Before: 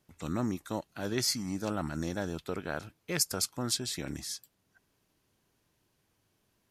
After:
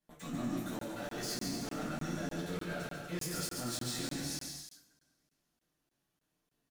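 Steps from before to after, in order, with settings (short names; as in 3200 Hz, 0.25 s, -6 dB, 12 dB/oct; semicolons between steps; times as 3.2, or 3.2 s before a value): 0.98–1.85 cycle switcher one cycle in 3, muted; de-hum 108.3 Hz, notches 2; sample leveller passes 5; limiter -34.5 dBFS, peak gain reduction 23 dB; flange 1.6 Hz, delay 6.3 ms, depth 1 ms, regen +46%; bouncing-ball echo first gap 0.14 s, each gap 0.7×, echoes 5; two-slope reverb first 0.37 s, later 2 s, from -27 dB, DRR -7 dB; crackling interface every 0.30 s, samples 1024, zero, from 0.79; gain -4 dB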